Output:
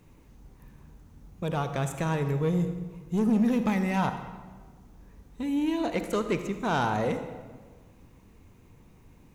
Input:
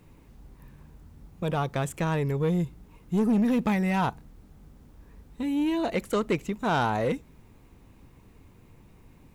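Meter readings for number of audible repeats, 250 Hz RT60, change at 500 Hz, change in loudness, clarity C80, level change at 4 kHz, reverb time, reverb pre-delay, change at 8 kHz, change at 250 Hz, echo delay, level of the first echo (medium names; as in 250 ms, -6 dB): no echo, 1.7 s, -1.0 dB, -1.0 dB, 10.0 dB, -1.5 dB, 1.5 s, 39 ms, +0.5 dB, -0.5 dB, no echo, no echo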